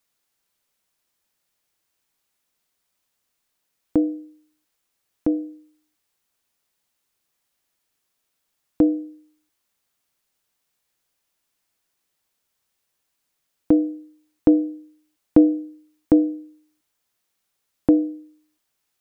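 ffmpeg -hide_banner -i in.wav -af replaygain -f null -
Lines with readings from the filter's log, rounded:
track_gain = +6.3 dB
track_peak = 0.553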